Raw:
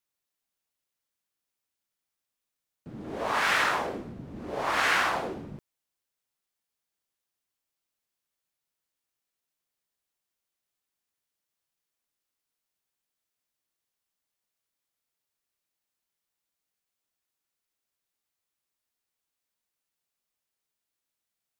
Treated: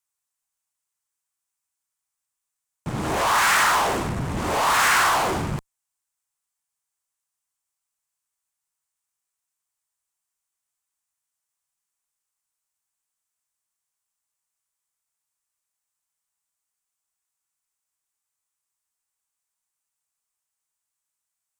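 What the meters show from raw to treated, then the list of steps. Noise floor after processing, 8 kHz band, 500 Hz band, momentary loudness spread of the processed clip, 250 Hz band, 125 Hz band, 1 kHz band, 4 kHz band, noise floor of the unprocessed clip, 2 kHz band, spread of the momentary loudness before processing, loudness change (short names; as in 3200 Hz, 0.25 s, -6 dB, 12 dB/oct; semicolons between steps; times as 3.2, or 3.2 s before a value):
-84 dBFS, +14.5 dB, +6.0 dB, 14 LU, +8.5 dB, +14.5 dB, +9.0 dB, +7.5 dB, under -85 dBFS, +5.5 dB, 19 LU, +6.5 dB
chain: graphic EQ 250/500/1000/4000/8000 Hz -9/-6/+6/-4/+11 dB; in parallel at -7.5 dB: fuzz box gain 46 dB, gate -53 dBFS; on the sum: gain -2 dB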